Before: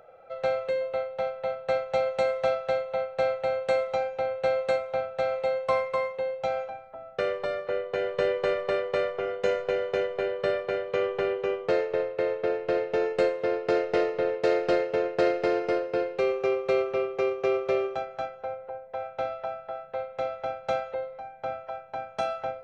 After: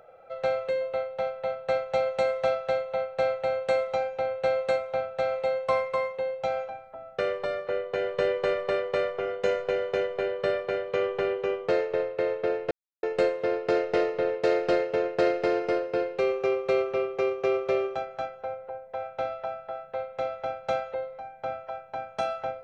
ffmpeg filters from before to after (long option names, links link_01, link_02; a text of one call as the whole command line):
ffmpeg -i in.wav -filter_complex "[0:a]asplit=3[link_01][link_02][link_03];[link_01]atrim=end=12.71,asetpts=PTS-STARTPTS,afade=type=out:start_time=12.706:duration=0.004:curve=hsin[link_04];[link_02]atrim=start=12.71:end=13.03,asetpts=PTS-STARTPTS,volume=0[link_05];[link_03]atrim=start=13.03,asetpts=PTS-STARTPTS,afade=type=in:duration=0.004:curve=hsin[link_06];[link_04][link_05][link_06]concat=n=3:v=0:a=1" out.wav